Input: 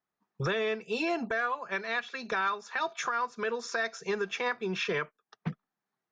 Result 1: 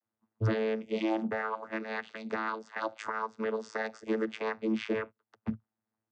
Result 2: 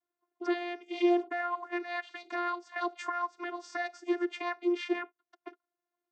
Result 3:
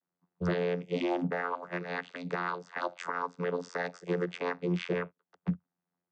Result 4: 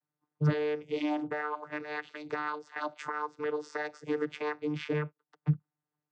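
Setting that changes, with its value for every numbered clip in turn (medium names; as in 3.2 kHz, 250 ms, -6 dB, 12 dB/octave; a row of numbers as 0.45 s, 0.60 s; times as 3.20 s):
vocoder, frequency: 110 Hz, 350 Hz, 88 Hz, 150 Hz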